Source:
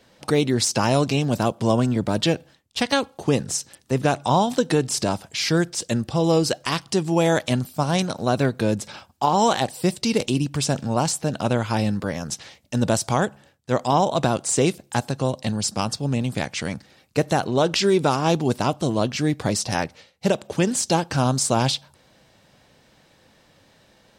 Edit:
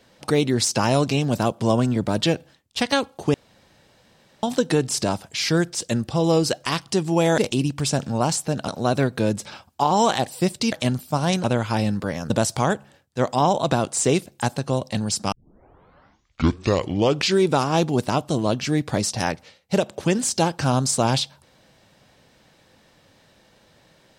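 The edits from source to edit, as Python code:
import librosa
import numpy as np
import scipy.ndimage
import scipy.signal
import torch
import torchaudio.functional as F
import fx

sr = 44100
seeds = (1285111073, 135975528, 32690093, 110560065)

y = fx.edit(x, sr, fx.room_tone_fill(start_s=3.34, length_s=1.09),
    fx.swap(start_s=7.38, length_s=0.72, other_s=10.14, other_length_s=1.3),
    fx.cut(start_s=12.3, length_s=0.52),
    fx.tape_start(start_s=15.84, length_s=2.08), tone=tone)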